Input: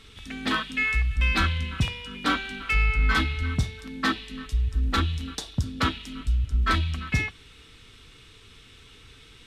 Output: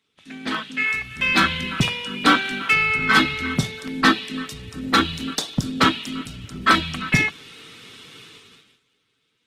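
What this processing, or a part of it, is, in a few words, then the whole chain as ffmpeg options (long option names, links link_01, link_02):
video call: -af "highpass=frequency=140:width=0.5412,highpass=frequency=140:width=1.3066,dynaudnorm=framelen=110:gausssize=21:maxgain=11dB,agate=range=-19dB:threshold=-45dB:ratio=16:detection=peak" -ar 48000 -c:a libopus -b:a 16k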